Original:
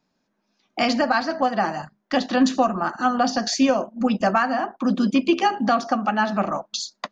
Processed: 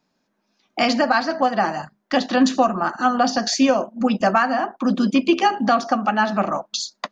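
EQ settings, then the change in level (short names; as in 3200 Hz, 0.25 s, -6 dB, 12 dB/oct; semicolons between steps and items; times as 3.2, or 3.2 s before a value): low shelf 120 Hz -5.5 dB; +2.5 dB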